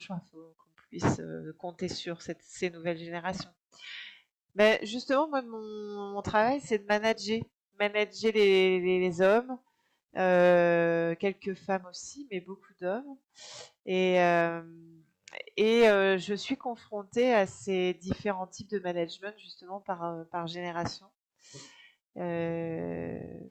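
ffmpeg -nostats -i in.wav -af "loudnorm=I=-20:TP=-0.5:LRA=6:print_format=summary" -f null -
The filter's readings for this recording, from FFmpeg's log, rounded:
Input Integrated:    -29.5 LUFS
Input True Peak:     -11.1 dBTP
Input LRA:            10.2 LU
Input Threshold:     -40.8 LUFS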